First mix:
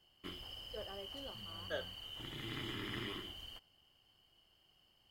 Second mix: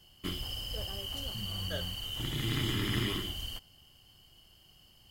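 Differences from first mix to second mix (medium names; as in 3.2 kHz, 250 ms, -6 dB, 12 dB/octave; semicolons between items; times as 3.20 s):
background +7.0 dB; master: add tone controls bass +9 dB, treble +10 dB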